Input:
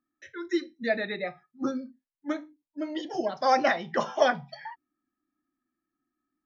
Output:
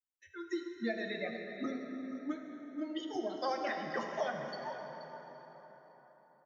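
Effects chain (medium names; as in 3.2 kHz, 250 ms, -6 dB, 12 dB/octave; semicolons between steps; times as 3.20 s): expander on every frequency bin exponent 1.5; compression, threshold -33 dBFS, peak gain reduction 15.5 dB; delay 478 ms -13 dB; plate-style reverb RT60 4.5 s, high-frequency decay 0.6×, DRR 2.5 dB; trim -1 dB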